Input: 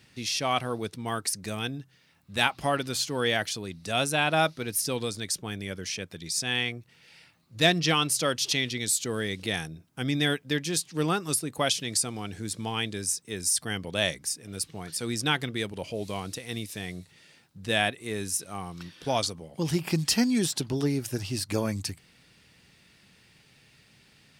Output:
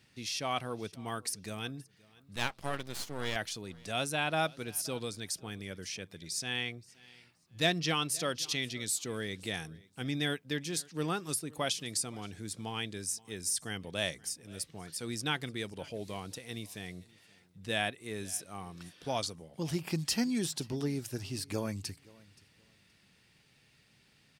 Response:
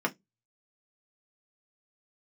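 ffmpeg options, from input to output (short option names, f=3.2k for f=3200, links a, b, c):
-filter_complex "[0:a]asettb=1/sr,asplit=3[a][b][c];[a]atrim=end=2.364[d];[b]atrim=start=2.36:end=3.36,asetpts=PTS-STARTPTS,afade=t=in:d=0.004:c=qsin,afade=t=out:st=0.996:d=0.004:c=qsin,aeval=exprs='max(val(0),0)':c=same[e];[c]atrim=start=3.356[f];[d][e]acrossfade=d=0.004:c1=hsin:c2=qsin[g];[g][f]acrossfade=d=0.004:c1=qsin:c2=hsin,aecho=1:1:524|1048:0.0668|0.014,volume=-7dB"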